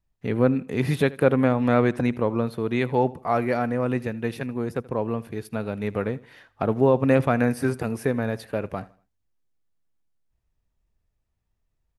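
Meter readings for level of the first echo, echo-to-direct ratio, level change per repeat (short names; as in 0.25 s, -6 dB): -21.0 dB, -20.5 dB, -9.0 dB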